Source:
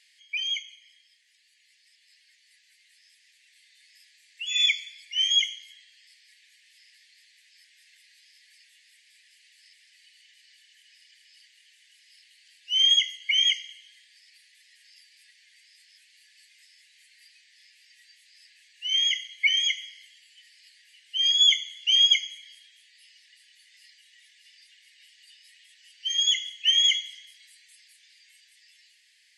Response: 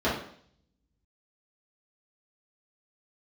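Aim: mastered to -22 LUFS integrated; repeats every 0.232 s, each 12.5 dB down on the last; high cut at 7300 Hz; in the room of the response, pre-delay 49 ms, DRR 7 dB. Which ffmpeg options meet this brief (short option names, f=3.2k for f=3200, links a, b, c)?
-filter_complex "[0:a]lowpass=7.3k,aecho=1:1:232|464|696:0.237|0.0569|0.0137,asplit=2[a][b];[1:a]atrim=start_sample=2205,adelay=49[c];[b][c]afir=irnorm=-1:irlink=0,volume=-21dB[d];[a][d]amix=inputs=2:normalize=0"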